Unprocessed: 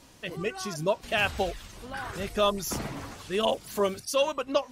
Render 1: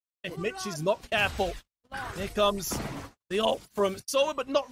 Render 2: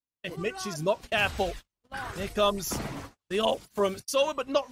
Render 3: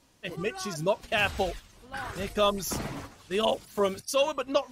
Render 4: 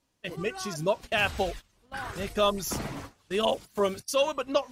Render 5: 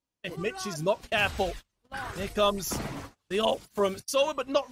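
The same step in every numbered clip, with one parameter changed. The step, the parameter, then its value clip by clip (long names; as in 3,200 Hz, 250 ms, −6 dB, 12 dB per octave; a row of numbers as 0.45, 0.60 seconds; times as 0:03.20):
noise gate, range: −60, −47, −9, −21, −35 decibels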